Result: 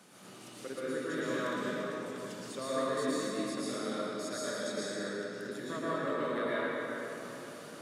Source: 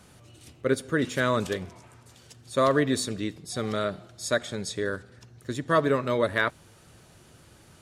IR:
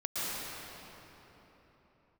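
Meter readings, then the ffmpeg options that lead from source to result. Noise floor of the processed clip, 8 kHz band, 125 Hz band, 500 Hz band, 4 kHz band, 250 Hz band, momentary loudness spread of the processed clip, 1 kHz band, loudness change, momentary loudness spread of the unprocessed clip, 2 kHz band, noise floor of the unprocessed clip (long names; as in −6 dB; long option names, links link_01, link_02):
−51 dBFS, −6.0 dB, −14.0 dB, −7.5 dB, −6.5 dB, −6.5 dB, 10 LU, −8.0 dB, −8.5 dB, 11 LU, −8.0 dB, −55 dBFS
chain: -filter_complex "[0:a]highpass=frequency=180:width=0.5412,highpass=frequency=180:width=1.3066,acompressor=threshold=-50dB:ratio=2[link_01];[1:a]atrim=start_sample=2205[link_02];[link_01][link_02]afir=irnorm=-1:irlink=0"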